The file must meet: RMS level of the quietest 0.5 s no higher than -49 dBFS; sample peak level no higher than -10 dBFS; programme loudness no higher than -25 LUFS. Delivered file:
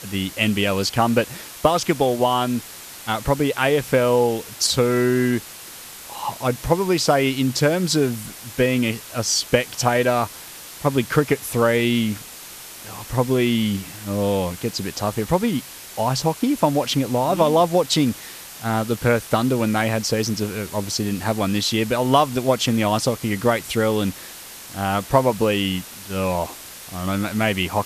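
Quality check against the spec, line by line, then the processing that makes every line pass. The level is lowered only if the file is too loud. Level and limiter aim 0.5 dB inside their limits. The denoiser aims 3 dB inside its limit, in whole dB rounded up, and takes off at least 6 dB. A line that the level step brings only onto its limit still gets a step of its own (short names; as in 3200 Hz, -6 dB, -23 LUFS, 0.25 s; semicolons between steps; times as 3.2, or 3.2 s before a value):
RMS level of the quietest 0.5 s -39 dBFS: fail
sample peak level -2.5 dBFS: fail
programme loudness -21.0 LUFS: fail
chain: denoiser 9 dB, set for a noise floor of -39 dBFS; gain -4.5 dB; limiter -10.5 dBFS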